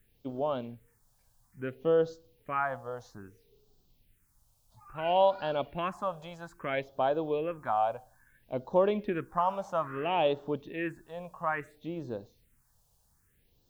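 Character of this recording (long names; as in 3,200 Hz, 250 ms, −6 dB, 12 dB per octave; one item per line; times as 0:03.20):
a quantiser's noise floor 12 bits, dither triangular
phaser sweep stages 4, 0.6 Hz, lowest notch 320–2,100 Hz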